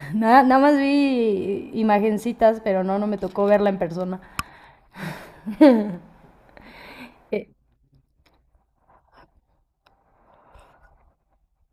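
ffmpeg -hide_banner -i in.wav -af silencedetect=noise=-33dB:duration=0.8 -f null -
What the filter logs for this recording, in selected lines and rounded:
silence_start: 7.43
silence_end: 11.73 | silence_duration: 4.30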